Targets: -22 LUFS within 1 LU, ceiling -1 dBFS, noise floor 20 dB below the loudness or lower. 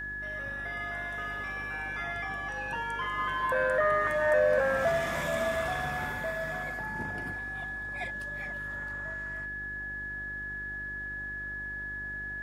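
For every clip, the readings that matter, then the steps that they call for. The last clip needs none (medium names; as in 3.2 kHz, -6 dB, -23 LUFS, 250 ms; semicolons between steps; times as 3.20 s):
hum 50 Hz; highest harmonic 400 Hz; hum level -44 dBFS; steady tone 1.7 kHz; tone level -35 dBFS; loudness -31.5 LUFS; peak level -14.0 dBFS; loudness target -22.0 LUFS
-> de-hum 50 Hz, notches 8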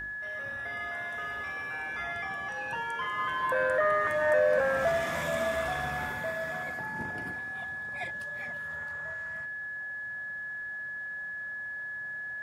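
hum not found; steady tone 1.7 kHz; tone level -35 dBFS
-> band-stop 1.7 kHz, Q 30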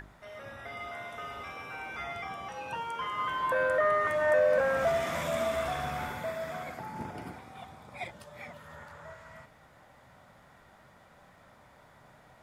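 steady tone not found; loudness -31.5 LUFS; peak level -15.5 dBFS; loudness target -22.0 LUFS
-> trim +9.5 dB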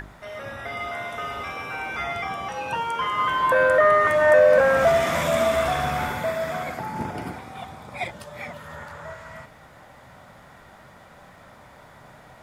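loudness -22.0 LUFS; peak level -6.0 dBFS; noise floor -49 dBFS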